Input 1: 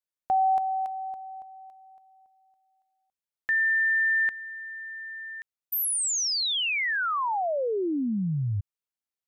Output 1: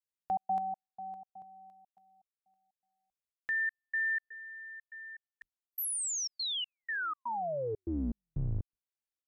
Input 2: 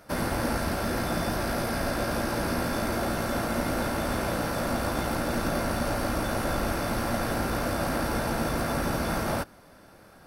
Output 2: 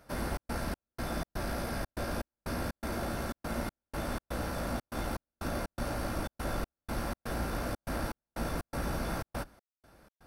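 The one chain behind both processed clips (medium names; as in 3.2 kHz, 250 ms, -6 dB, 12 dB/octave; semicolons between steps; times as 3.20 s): octave divider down 2 oct, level 0 dB; trance gate "xxx.xx..xx.x" 122 bpm -60 dB; trim -7.5 dB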